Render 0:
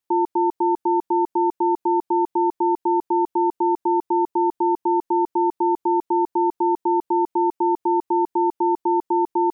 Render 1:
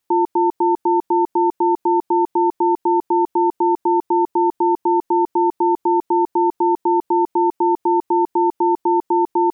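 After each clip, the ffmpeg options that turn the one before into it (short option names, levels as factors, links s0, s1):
-af "alimiter=level_in=7.08:limit=0.891:release=50:level=0:latency=1,volume=0.376"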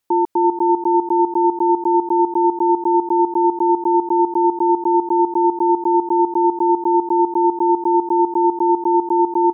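-af "aecho=1:1:339:0.335"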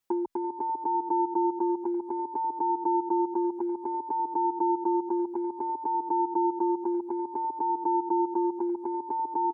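-filter_complex "[0:a]acompressor=threshold=0.112:ratio=6,asplit=2[s0][s1];[s1]adelay=5.8,afreqshift=0.59[s2];[s0][s2]amix=inputs=2:normalize=1,volume=0.75"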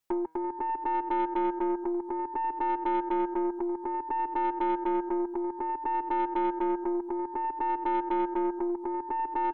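-af "aeval=exprs='0.158*(cos(1*acos(clip(val(0)/0.158,-1,1)))-cos(1*PI/2))+0.0126*(cos(4*acos(clip(val(0)/0.158,-1,1)))-cos(4*PI/2))+0.01*(cos(5*acos(clip(val(0)/0.158,-1,1)))-cos(5*PI/2))':c=same,bandreject=f=159.5:t=h:w=4,bandreject=f=319:t=h:w=4,bandreject=f=478.5:t=h:w=4,bandreject=f=638:t=h:w=4,bandreject=f=797.5:t=h:w=4,bandreject=f=957:t=h:w=4,bandreject=f=1116.5:t=h:w=4,bandreject=f=1276:t=h:w=4,bandreject=f=1435.5:t=h:w=4,bandreject=f=1595:t=h:w=4,bandreject=f=1754.5:t=h:w=4,bandreject=f=1914:t=h:w=4,bandreject=f=2073.5:t=h:w=4,bandreject=f=2233:t=h:w=4,bandreject=f=2392.5:t=h:w=4,bandreject=f=2552:t=h:w=4,bandreject=f=2711.5:t=h:w=4,bandreject=f=2871:t=h:w=4,bandreject=f=3030.5:t=h:w=4,bandreject=f=3190:t=h:w=4,bandreject=f=3349.5:t=h:w=4,bandreject=f=3509:t=h:w=4,bandreject=f=3668.5:t=h:w=4,bandreject=f=3828:t=h:w=4,bandreject=f=3987.5:t=h:w=4,bandreject=f=4147:t=h:w=4,bandreject=f=4306.5:t=h:w=4,bandreject=f=4466:t=h:w=4,bandreject=f=4625.5:t=h:w=4,bandreject=f=4785:t=h:w=4,bandreject=f=4944.5:t=h:w=4,bandreject=f=5104:t=h:w=4,bandreject=f=5263.5:t=h:w=4,bandreject=f=5423:t=h:w=4,bandreject=f=5582.5:t=h:w=4,bandreject=f=5742:t=h:w=4,bandreject=f=5901.5:t=h:w=4,volume=0.75"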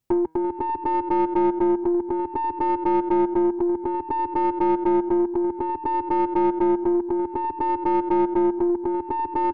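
-filter_complex "[0:a]asplit=2[s0][s1];[s1]adynamicsmooth=sensitivity=1:basefreq=740,volume=1.26[s2];[s0][s2]amix=inputs=2:normalize=0,equalizer=f=86:w=0.55:g=12"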